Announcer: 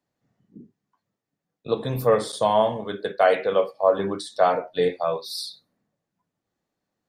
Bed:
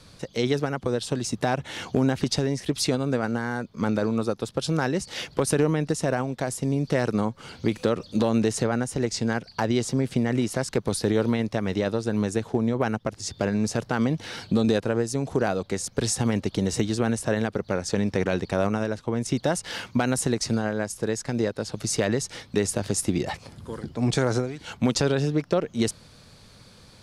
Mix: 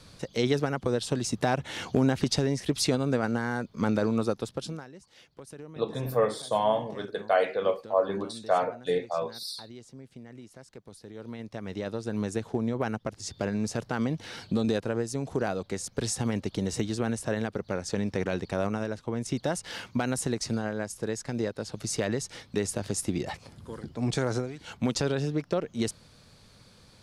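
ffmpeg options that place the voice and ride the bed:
-filter_complex "[0:a]adelay=4100,volume=-5.5dB[a];[1:a]volume=16dB,afade=t=out:st=4.32:d=0.53:silence=0.0891251,afade=t=in:st=11.12:d=1.18:silence=0.133352[b];[a][b]amix=inputs=2:normalize=0"

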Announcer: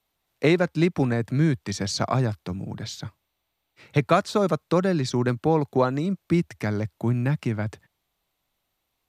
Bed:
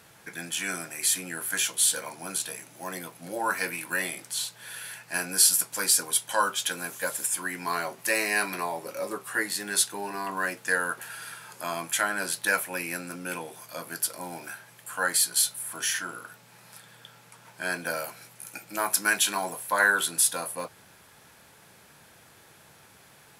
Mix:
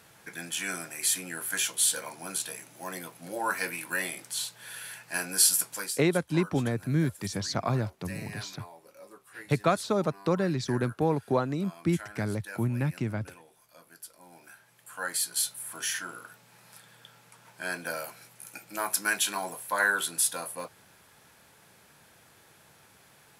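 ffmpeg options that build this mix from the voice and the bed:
-filter_complex "[0:a]adelay=5550,volume=-5dB[a];[1:a]volume=12dB,afade=t=out:st=5.68:d=0.28:silence=0.16788,afade=t=in:st=14.19:d=1.5:silence=0.199526[b];[a][b]amix=inputs=2:normalize=0"

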